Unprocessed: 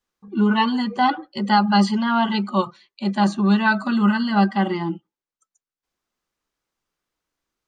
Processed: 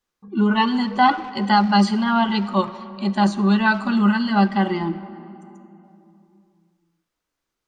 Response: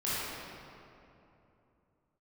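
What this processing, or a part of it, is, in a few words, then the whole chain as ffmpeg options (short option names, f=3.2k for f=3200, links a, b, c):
saturated reverb return: -filter_complex "[0:a]asettb=1/sr,asplit=3[a][b][c];[a]atrim=end=0.954[d];[b]atrim=start=0.95:end=1.52,asetpts=PTS-STARTPTS,afade=t=in:d=0.004:c=qsin,afade=t=out:st=0.566:d=0.004:c=qsin,equalizer=f=1.3k:w=0.7:g=4[e];[c]atrim=start=1.516[f];[d][e]acrossfade=d=0.004:c1=hsin:c2=qsin[g];[g][f]acrossfade=d=0.004:c1=qsin:c2=hsin,asplit=2[h][i];[1:a]atrim=start_sample=2205[j];[i][j]afir=irnorm=-1:irlink=0,asoftclip=type=tanh:threshold=-9dB,volume=-19dB[k];[h][k]amix=inputs=2:normalize=0"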